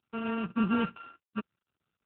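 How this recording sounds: a buzz of ramps at a fixed pitch in blocks of 32 samples; random-step tremolo 4 Hz; AMR-NB

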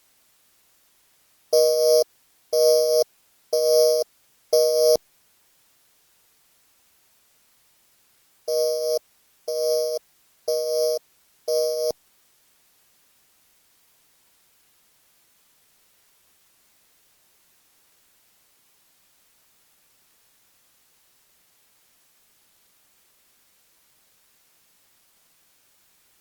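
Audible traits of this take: a buzz of ramps at a fixed pitch in blocks of 8 samples; tremolo triangle 2.7 Hz, depth 55%; a quantiser's noise floor 10-bit, dither triangular; Opus

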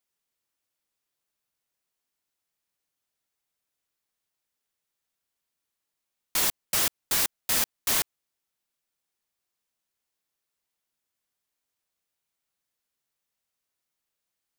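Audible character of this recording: noise floor -85 dBFS; spectral tilt 0.0 dB/oct

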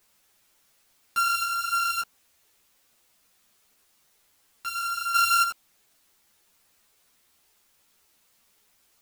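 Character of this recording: a buzz of ramps at a fixed pitch in blocks of 32 samples; random-step tremolo, depth 75%; a quantiser's noise floor 12-bit, dither triangular; a shimmering, thickened sound

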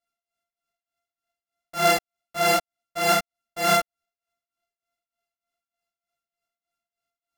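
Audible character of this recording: a buzz of ramps at a fixed pitch in blocks of 64 samples; tremolo triangle 3.3 Hz, depth 90%; a shimmering, thickened sound

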